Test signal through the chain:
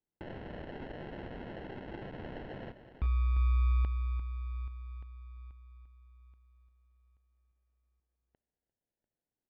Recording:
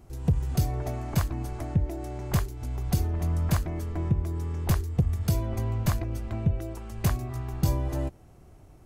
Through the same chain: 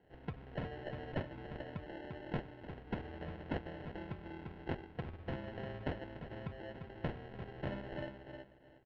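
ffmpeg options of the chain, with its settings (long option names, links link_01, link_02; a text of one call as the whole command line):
ffmpeg -i in.wav -filter_complex "[0:a]highpass=frequency=1100:poles=1,asplit=2[link_01][link_02];[link_02]adelay=347,lowpass=frequency=1400:poles=1,volume=-5.5dB,asplit=2[link_03][link_04];[link_04]adelay=347,lowpass=frequency=1400:poles=1,volume=0.23,asplit=2[link_05][link_06];[link_06]adelay=347,lowpass=frequency=1400:poles=1,volume=0.23[link_07];[link_03][link_05][link_07]amix=inputs=3:normalize=0[link_08];[link_01][link_08]amix=inputs=2:normalize=0,acrusher=samples=37:mix=1:aa=0.000001,lowpass=frequency=3000:width=0.5412,lowpass=frequency=3000:width=1.3066,volume=-2dB" out.wav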